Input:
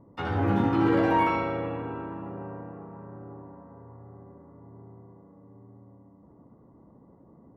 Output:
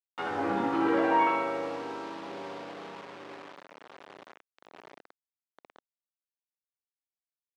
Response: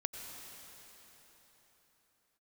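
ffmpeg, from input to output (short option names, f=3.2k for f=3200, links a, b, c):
-filter_complex "[0:a]asettb=1/sr,asplit=3[a][b][c];[a]atrim=end=2.284[d];[b]atrim=start=2.28:end=3.01,asetpts=PTS-STARTPTS,afade=t=in:d=0.004:c=qsin,afade=t=out:st=0.726:d=0.004:c=qsin,aeval=exprs='val(0)+0.5*0.00531*sgn(val(0))':c=same[e];[c]atrim=start=3.006[f];[d][e]acrossfade=d=0.004:c1=hsin:c2=qsin[g];[g][f]acrossfade=d=0.004:c1=qsin:c2=hsin,acrusher=bits=6:mix=0:aa=0.000001,highpass=360,lowpass=3.6k"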